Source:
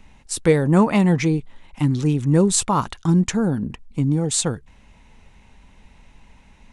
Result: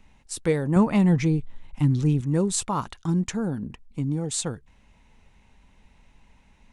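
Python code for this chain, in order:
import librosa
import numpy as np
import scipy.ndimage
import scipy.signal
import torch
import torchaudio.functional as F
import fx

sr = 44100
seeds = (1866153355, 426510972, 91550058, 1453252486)

y = fx.low_shelf(x, sr, hz=160.0, db=11.5, at=(0.76, 2.21))
y = y * 10.0 ** (-7.0 / 20.0)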